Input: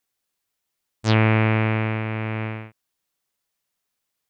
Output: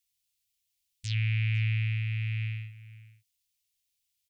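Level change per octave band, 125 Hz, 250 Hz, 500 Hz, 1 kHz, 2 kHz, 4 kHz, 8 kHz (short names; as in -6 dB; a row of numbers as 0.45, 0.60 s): -5.5 dB, under -20 dB, under -40 dB, under -35 dB, -10.0 dB, -7.0 dB, n/a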